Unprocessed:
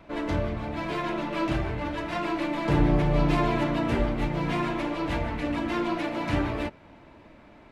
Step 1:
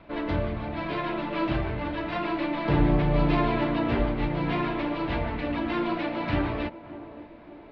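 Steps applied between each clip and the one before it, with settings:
Butterworth low-pass 4,500 Hz 36 dB per octave
feedback echo with a band-pass in the loop 570 ms, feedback 59%, band-pass 450 Hz, level −13 dB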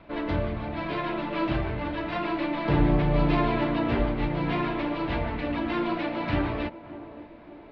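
no processing that can be heard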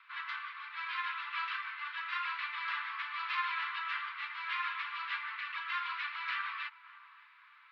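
Butterworth high-pass 1,100 Hz 72 dB per octave
high-shelf EQ 3,700 Hz −8.5 dB
level +1.5 dB

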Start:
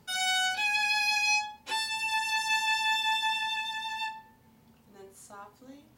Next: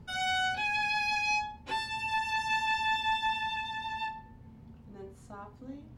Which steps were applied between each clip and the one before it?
RIAA equalisation playback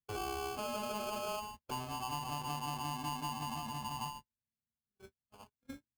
noise gate −42 dBFS, range −47 dB
downward compressor, threshold −33 dBFS, peak gain reduction 8 dB
sample-rate reduction 1,900 Hz, jitter 0%
level −3 dB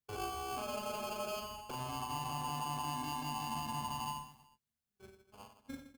brickwall limiter −36 dBFS, peak gain reduction 7 dB
on a send: reverse bouncing-ball delay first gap 40 ms, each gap 1.3×, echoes 5

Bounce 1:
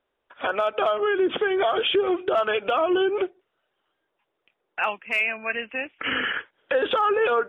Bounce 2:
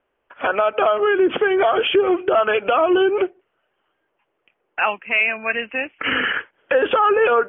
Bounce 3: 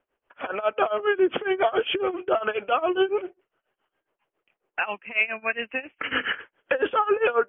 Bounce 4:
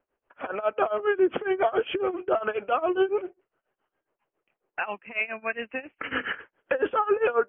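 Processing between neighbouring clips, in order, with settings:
Butterworth low-pass 3,100 Hz 72 dB per octave; level +5.5 dB
amplitude tremolo 7.3 Hz, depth 89%; level −2.5 dB
high-frequency loss of the air 430 metres

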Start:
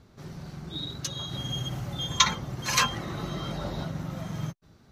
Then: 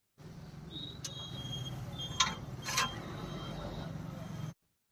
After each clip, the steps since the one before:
downward expander −42 dBFS
bit-depth reduction 12 bits, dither triangular
level −8.5 dB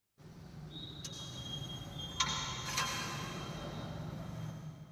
convolution reverb RT60 2.4 s, pre-delay 78 ms, DRR 1 dB
level −4 dB

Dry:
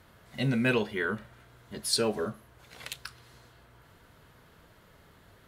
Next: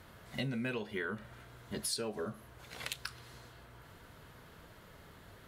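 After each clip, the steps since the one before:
downward compressor 10 to 1, threshold −36 dBFS, peak gain reduction 14.5 dB
level +2 dB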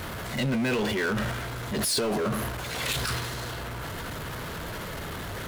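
transient designer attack −4 dB, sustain +11 dB
power curve on the samples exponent 0.5
level +4 dB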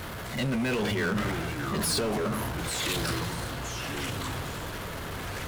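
delay with pitch and tempo change per echo 368 ms, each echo −4 semitones, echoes 2, each echo −6 dB
level −2 dB

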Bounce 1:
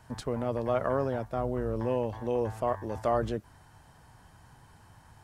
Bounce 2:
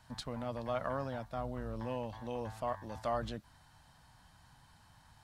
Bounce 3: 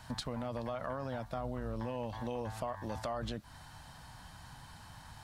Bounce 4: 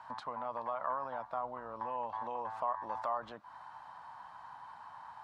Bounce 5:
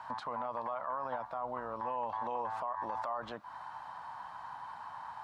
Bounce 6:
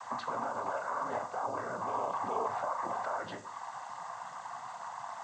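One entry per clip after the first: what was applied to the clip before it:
graphic EQ with 15 bands 100 Hz −4 dB, 400 Hz −12 dB, 4,000 Hz +8 dB; level −5 dB
brickwall limiter −30 dBFS, peak gain reduction 7.5 dB; downward compressor 3 to 1, threshold −47 dBFS, peak gain reduction 9 dB; level +10 dB
resonant band-pass 1,000 Hz, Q 3.5; level +10 dB
brickwall limiter −33 dBFS, peak gain reduction 9.5 dB; level +5 dB
background noise violet −51 dBFS; cochlear-implant simulation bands 16; on a send at −8.5 dB: convolution reverb RT60 0.55 s, pre-delay 23 ms; on the sum: level +2.5 dB

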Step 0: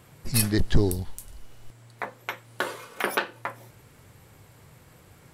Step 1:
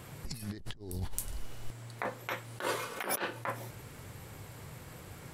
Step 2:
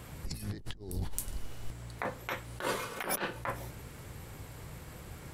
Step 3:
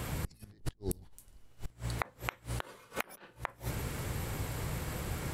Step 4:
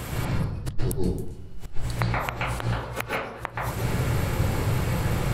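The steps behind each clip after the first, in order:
compressor whose output falls as the input rises −35 dBFS, ratio −1; level −3 dB
sub-octave generator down 1 octave, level −2 dB
gate with flip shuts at −31 dBFS, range −28 dB; level +9 dB
convolution reverb RT60 0.90 s, pre-delay 122 ms, DRR −4.5 dB; level +5 dB

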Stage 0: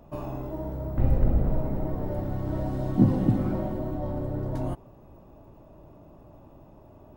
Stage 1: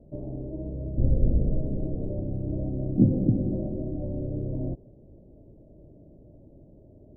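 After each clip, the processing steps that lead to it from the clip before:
Butterworth low-pass 570 Hz 36 dB per octave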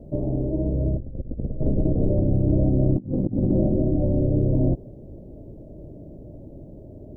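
compressor whose output falls as the input rises −28 dBFS, ratio −0.5
level +7.5 dB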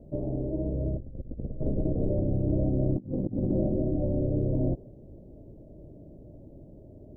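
dynamic equaliser 520 Hz, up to +3 dB, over −35 dBFS, Q 1.1
level −7 dB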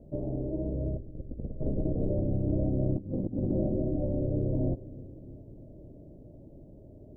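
bucket-brigade delay 315 ms, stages 1,024, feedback 64%, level −18 dB
level −2 dB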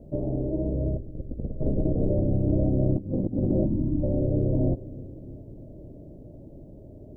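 gain on a spectral selection 0:03.65–0:04.04, 360–800 Hz −16 dB
level +5 dB

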